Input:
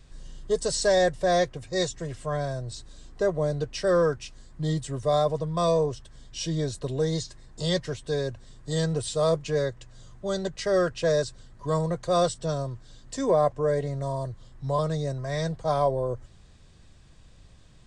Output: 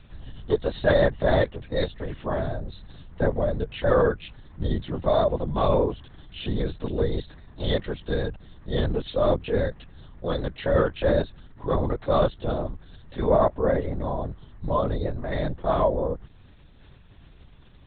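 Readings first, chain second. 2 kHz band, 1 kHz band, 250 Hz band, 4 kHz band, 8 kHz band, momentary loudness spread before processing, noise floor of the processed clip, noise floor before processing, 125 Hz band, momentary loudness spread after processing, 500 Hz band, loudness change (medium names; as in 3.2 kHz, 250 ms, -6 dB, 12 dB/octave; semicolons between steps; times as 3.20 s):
+2.0 dB, +1.0 dB, +2.0 dB, -3.0 dB, under -40 dB, 13 LU, -51 dBFS, -53 dBFS, +1.0 dB, 15 LU, +1.0 dB, +1.0 dB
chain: LPC vocoder at 8 kHz whisper; trim +2 dB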